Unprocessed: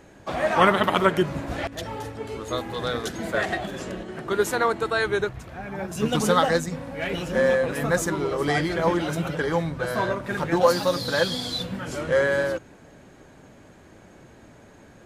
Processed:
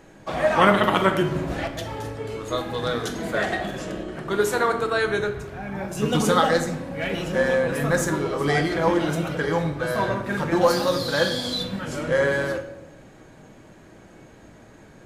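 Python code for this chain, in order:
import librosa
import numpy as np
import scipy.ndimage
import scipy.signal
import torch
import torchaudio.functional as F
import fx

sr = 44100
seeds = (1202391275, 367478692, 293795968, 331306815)

y = fx.room_shoebox(x, sr, seeds[0], volume_m3=270.0, walls='mixed', distance_m=0.61)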